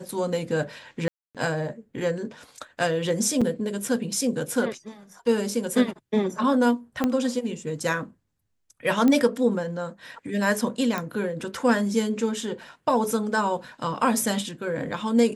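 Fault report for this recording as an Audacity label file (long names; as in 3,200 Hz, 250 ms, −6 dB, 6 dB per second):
1.080000	1.350000	drop-out 267 ms
3.410000	3.420000	drop-out 5.5 ms
7.040000	7.040000	click −10 dBFS
9.080000	9.080000	click −11 dBFS
10.980000	10.980000	click −14 dBFS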